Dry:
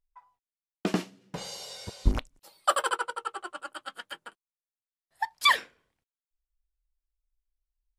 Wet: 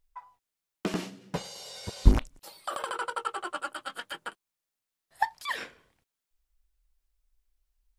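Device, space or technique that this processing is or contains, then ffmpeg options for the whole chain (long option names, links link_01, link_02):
de-esser from a sidechain: -filter_complex "[0:a]asplit=2[link_01][link_02];[link_02]highpass=frequency=4200:width=0.5412,highpass=frequency=4200:width=1.3066,apad=whole_len=352122[link_03];[link_01][link_03]sidechaincompress=threshold=-51dB:ratio=20:attack=1:release=22,volume=8.5dB"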